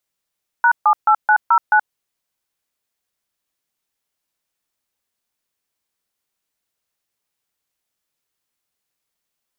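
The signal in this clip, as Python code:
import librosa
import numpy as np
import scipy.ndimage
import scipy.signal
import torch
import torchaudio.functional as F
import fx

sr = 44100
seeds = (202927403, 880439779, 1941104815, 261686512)

y = fx.dtmf(sr, digits='#78909', tone_ms=76, gap_ms=140, level_db=-12.0)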